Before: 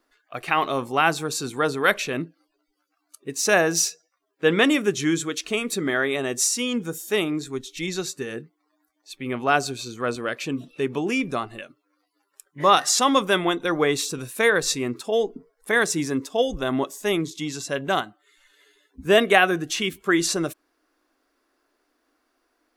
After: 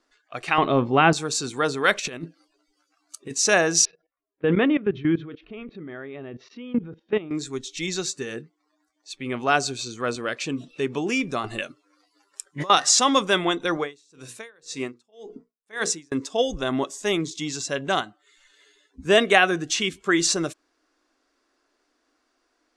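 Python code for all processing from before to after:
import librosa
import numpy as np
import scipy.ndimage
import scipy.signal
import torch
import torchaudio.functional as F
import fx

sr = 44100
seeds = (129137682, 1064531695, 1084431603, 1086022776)

y = fx.chain(x, sr, fx.lowpass(hz=3600.0, slope=24),
    fx.low_shelf(hz=480.0, db=12.0), at=(0.58, 1.13))
y = fx.chain(y, sr, fx.high_shelf(hz=11000.0, db=10.5),
    fx.over_compress(threshold_db=-31.0, ratio=-0.5), at=(1.98, 3.34))
y = fx.chain(y, sr, fx.cheby2_lowpass(hz=7600.0, order=4, stop_db=50),
    fx.tilt_eq(slope=-3.0),
    fx.level_steps(step_db=18), at=(3.85, 7.31))
y = fx.chain(y, sr, fx.over_compress(threshold_db=-29.0, ratio=-1.0),
    fx.high_shelf(hz=8500.0, db=7.0), at=(11.44, 12.7))
y = fx.chain(y, sr, fx.low_shelf(hz=80.0, db=-11.5),
    fx.hum_notches(base_hz=60, count=9),
    fx.tremolo_db(hz=1.9, depth_db=36), at=(13.77, 16.12))
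y = scipy.signal.sosfilt(scipy.signal.butter(4, 7700.0, 'lowpass', fs=sr, output='sos'), y)
y = fx.high_shelf(y, sr, hz=5100.0, db=9.0)
y = y * 10.0 ** (-1.0 / 20.0)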